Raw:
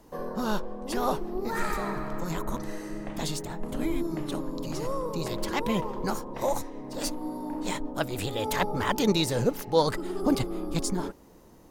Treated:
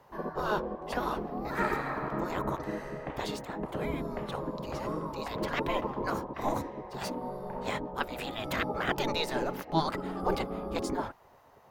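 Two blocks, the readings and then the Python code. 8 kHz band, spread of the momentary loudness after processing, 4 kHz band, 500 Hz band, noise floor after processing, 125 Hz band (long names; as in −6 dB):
−11.5 dB, 7 LU, −4.5 dB, −3.5 dB, −58 dBFS, −5.0 dB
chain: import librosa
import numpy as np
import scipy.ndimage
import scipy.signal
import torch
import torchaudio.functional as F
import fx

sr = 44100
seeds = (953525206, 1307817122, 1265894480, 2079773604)

y = fx.peak_eq(x, sr, hz=8100.0, db=-10.0, octaves=1.9)
y = fx.spec_gate(y, sr, threshold_db=-10, keep='weak')
y = fx.high_shelf(y, sr, hz=3800.0, db=-8.5)
y = y * 10.0 ** (4.5 / 20.0)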